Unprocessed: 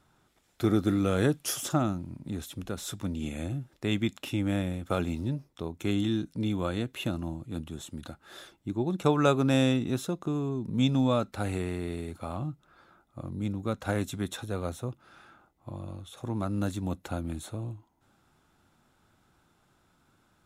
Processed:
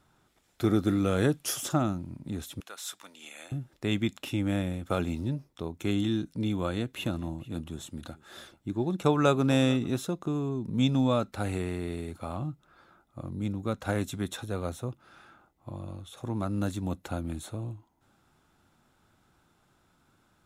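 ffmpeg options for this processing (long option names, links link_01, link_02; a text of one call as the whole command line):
ffmpeg -i in.wav -filter_complex "[0:a]asettb=1/sr,asplit=3[link_01][link_02][link_03];[link_01]atrim=end=2.604[link_04];[link_02]atrim=start=2.6:end=3.52,asetpts=PTS-STARTPTS,afade=type=in:duration=0.004:curve=qsin,afade=type=out:start_time=0.916:duration=0.004:curve=qsin,highpass=990[link_05];[link_03]atrim=start=3.516[link_06];[link_04][link_05]acrossfade=duration=0.004:curve1=hsin:curve2=qsin[link_07];[link_07][link_06]acrossfade=duration=0.004:curve1=qsin:curve2=hsin,asettb=1/sr,asplit=3[link_08][link_09][link_10];[link_08]atrim=end=6.544[link_11];[link_09]atrim=start=6.54:end=9.97,asetpts=PTS-STARTPTS,afade=type=in:duration=0.004:curve=qsin,afade=type=out:start_time=3.426:duration=0.004:curve=qsin,aecho=1:1:441:0.0891,atrim=end_sample=151263[link_12];[link_10]atrim=start=9.966[link_13];[link_11][link_12]acrossfade=duration=0.004:curve1=hsin:curve2=qsin[link_14];[link_14][link_13]acrossfade=duration=0.004:curve1=qsin:curve2=hsin" out.wav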